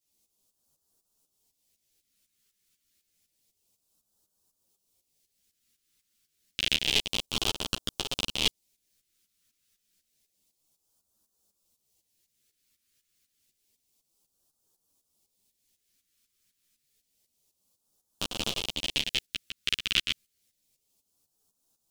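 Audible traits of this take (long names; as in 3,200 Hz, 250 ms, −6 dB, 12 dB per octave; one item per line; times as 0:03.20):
phaser sweep stages 2, 0.29 Hz, lowest notch 800–2,000 Hz
tremolo saw up 4 Hz, depth 75%
a shimmering, thickened sound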